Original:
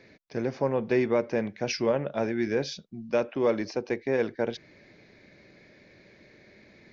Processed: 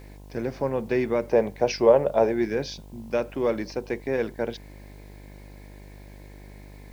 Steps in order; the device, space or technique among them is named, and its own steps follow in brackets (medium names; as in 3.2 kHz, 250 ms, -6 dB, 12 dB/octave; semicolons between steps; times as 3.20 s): 1.31–2.45 s: high-order bell 640 Hz +9.5 dB; video cassette with head-switching buzz (mains buzz 50 Hz, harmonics 21, -45 dBFS -6 dB/octave; white noise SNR 36 dB)